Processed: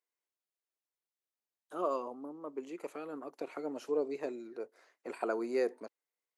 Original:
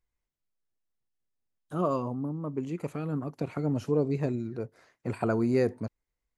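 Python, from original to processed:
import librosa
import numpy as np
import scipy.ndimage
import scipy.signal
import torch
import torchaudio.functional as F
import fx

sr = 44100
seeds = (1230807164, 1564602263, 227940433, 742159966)

y = scipy.signal.sosfilt(scipy.signal.butter(4, 340.0, 'highpass', fs=sr, output='sos'), x)
y = y * librosa.db_to_amplitude(-4.0)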